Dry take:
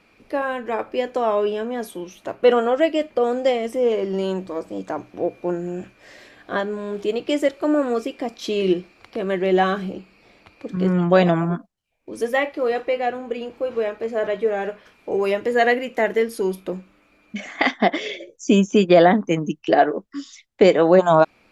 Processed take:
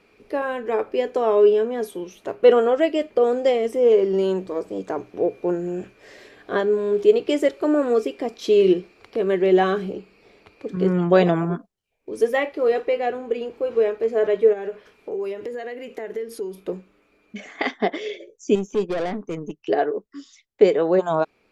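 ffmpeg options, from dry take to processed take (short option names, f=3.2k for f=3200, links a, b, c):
-filter_complex "[0:a]asplit=3[a][b][c];[a]afade=t=out:st=14.52:d=0.02[d];[b]acompressor=threshold=-29dB:ratio=6:attack=3.2:release=140:knee=1:detection=peak,afade=t=in:st=14.52:d=0.02,afade=t=out:st=16.59:d=0.02[e];[c]afade=t=in:st=16.59:d=0.02[f];[d][e][f]amix=inputs=3:normalize=0,asettb=1/sr,asplit=3[g][h][i];[g]atrim=end=18.554[j];[h]atrim=start=18.55:end=19.63,asetpts=PTS-STARTPTS,afade=t=in:d=0.004:c=qsin,afade=t=out:st=1.076:d=0.004:c=qsin,aeval=exprs='(tanh(7.08*val(0)+0.45)-tanh(0.45))/7.08':c=same[k];[i]atrim=start=19.626[l];[j][k]acrossfade=d=0.004:c1=hsin:c2=qsin[m];[m][l]acrossfade=d=0.004:c1=qsin:c2=hsin,equalizer=f=420:w=4.4:g=11,dynaudnorm=f=350:g=21:m=11.5dB,volume=-2.5dB"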